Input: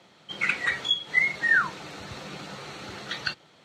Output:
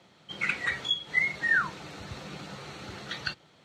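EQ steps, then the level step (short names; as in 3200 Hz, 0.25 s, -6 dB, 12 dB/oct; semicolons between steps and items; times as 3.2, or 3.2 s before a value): low shelf 140 Hz +8 dB; -3.5 dB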